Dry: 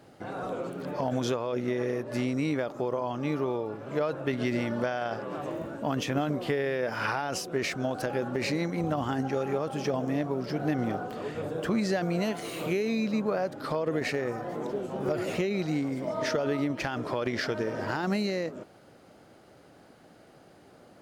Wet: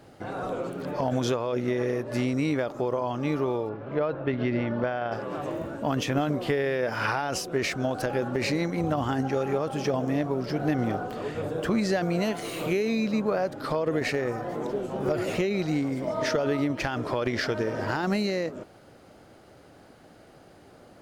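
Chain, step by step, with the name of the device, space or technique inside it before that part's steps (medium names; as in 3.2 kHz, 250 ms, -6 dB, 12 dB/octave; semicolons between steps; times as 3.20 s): 3.69–5.12 s: distance through air 270 m; low shelf boost with a cut just above (bass shelf 94 Hz +8 dB; peaking EQ 170 Hz -2.5 dB 1.1 oct); trim +2.5 dB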